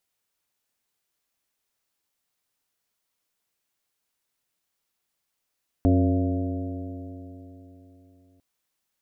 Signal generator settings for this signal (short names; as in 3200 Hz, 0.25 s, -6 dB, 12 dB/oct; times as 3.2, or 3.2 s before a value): stretched partials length 2.55 s, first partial 89 Hz, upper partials -12/0.5/-11/-12.5/-12.5/-11 dB, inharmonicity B 0.004, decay 3.59 s, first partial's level -18.5 dB